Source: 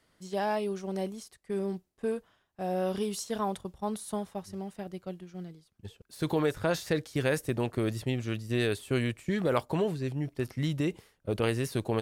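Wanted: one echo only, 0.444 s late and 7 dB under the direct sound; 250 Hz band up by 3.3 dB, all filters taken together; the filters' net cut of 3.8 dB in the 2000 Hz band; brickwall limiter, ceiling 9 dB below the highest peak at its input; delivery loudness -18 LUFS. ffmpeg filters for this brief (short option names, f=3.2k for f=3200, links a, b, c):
-af "equalizer=f=250:t=o:g=4.5,equalizer=f=2k:t=o:g=-5,alimiter=limit=-21.5dB:level=0:latency=1,aecho=1:1:444:0.447,volume=14.5dB"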